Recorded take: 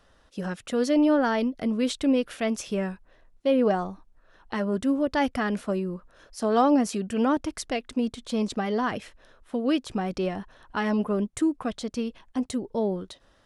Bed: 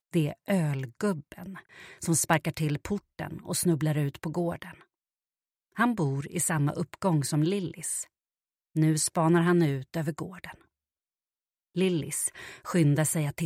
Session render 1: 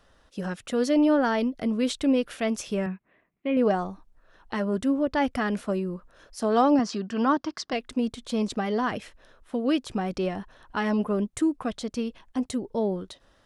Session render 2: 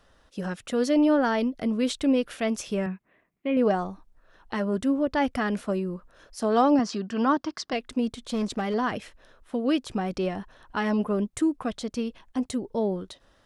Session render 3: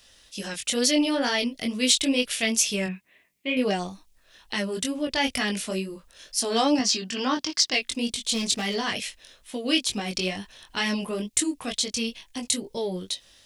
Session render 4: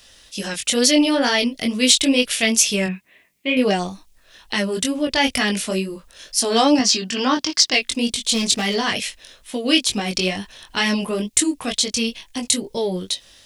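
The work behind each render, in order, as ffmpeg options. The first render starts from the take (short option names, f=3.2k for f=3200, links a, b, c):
-filter_complex "[0:a]asettb=1/sr,asplit=3[a][b][c];[a]atrim=end=2.864[d];[b]atrim=start=2.86:end=3.57,asetpts=PTS-STARTPTS,afade=t=in:d=0.004:c=qsin,afade=t=out:st=0.706:d=0.004:c=qsin,highpass=160,equalizer=f=190:t=q:w=4:g=5,equalizer=f=530:t=q:w=4:g=-8,equalizer=f=860:t=q:w=4:g=-7,equalizer=f=1.5k:t=q:w=4:g=-6,equalizer=f=2.2k:t=q:w=4:g=7,lowpass=f=2.6k:w=0.5412,lowpass=f=2.6k:w=1.3066[e];[c]atrim=start=3.566[f];[d][e]acrossfade=d=0.004:c1=hsin:c2=qsin[g];[g][f]acrossfade=d=0.004:c1=qsin:c2=hsin,asettb=1/sr,asplit=3[h][i][j];[h]atrim=end=4.884[k];[i]atrim=start=4.88:end=5.28,asetpts=PTS-STARTPTS,afade=t=in:d=0.004:c=qsin,afade=t=out:st=0.396:d=0.004:c=qsin,highshelf=f=5.1k:g=-8.5[l];[j]atrim=start=5.276[m];[k][l]acrossfade=d=0.004:c1=hsin:c2=qsin[n];[n][m]acrossfade=d=0.004:c1=qsin:c2=hsin,asettb=1/sr,asplit=3[o][p][q];[o]atrim=end=6.794[r];[p]atrim=start=6.79:end=7.73,asetpts=PTS-STARTPTS,afade=t=in:d=0.004:c=qsin,afade=t=out:st=0.936:d=0.004:c=qsin,highpass=160,equalizer=f=490:t=q:w=4:g=-5,equalizer=f=1.1k:t=q:w=4:g=7,equalizer=f=1.6k:t=q:w=4:g=3,equalizer=f=2.4k:t=q:w=4:g=-5,equalizer=f=4.9k:t=q:w=4:g=6,lowpass=f=6k:w=0.5412,lowpass=f=6k:w=1.3066[s];[q]atrim=start=7.726[t];[r][s]acrossfade=d=0.004:c1=hsin:c2=qsin[u];[u][t]acrossfade=d=0.004:c1=qsin:c2=hsin"
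-filter_complex "[0:a]asettb=1/sr,asplit=3[a][b][c];[a]atrim=end=8.174[d];[b]atrim=start=8.17:end=8.74,asetpts=PTS-STARTPTS,afade=t=in:d=0.004:c=qsin,afade=t=out:st=0.566:d=0.004:c=qsin,asoftclip=type=hard:threshold=-22.5dB[e];[c]atrim=start=8.736[f];[d][e]acrossfade=d=0.004:c1=hsin:c2=qsin[g];[g][f]acrossfade=d=0.004:c1=qsin:c2=hsin"
-af "flanger=delay=19.5:depth=2.8:speed=2.2,aexciter=amount=4.4:drive=8:freq=2k"
-af "volume=6.5dB,alimiter=limit=-1dB:level=0:latency=1"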